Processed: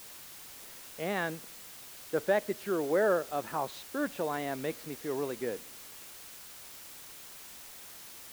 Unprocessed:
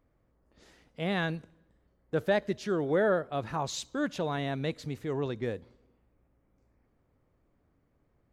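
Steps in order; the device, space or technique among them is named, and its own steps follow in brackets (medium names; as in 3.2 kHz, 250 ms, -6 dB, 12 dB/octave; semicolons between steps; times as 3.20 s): wax cylinder (band-pass 270–2400 Hz; wow and flutter; white noise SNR 13 dB)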